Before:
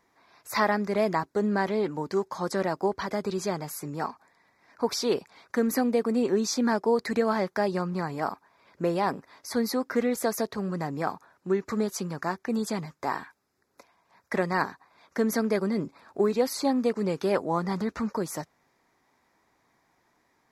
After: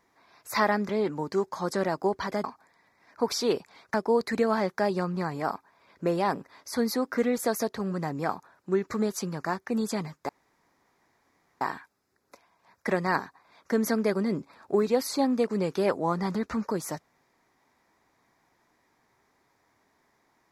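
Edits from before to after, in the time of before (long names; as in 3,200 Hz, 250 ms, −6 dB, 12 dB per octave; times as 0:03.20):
0:00.89–0:01.68: remove
0:03.23–0:04.05: remove
0:05.55–0:06.72: remove
0:13.07: splice in room tone 1.32 s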